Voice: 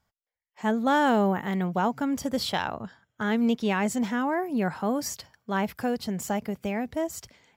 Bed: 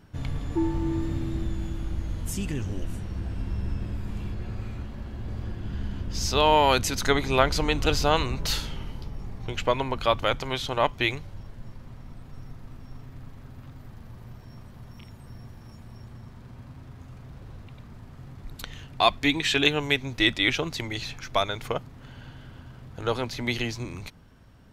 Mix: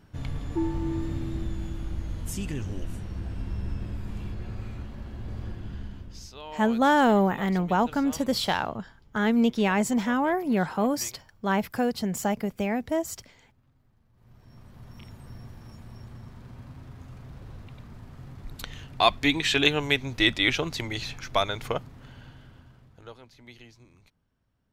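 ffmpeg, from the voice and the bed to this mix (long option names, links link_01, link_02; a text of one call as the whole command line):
ffmpeg -i stem1.wav -i stem2.wav -filter_complex "[0:a]adelay=5950,volume=2dB[link_01];[1:a]volume=19.5dB,afade=type=out:start_time=5.49:duration=0.84:silence=0.105925,afade=type=in:start_time=14.13:duration=0.93:silence=0.0841395,afade=type=out:start_time=21.74:duration=1.41:silence=0.0891251[link_02];[link_01][link_02]amix=inputs=2:normalize=0" out.wav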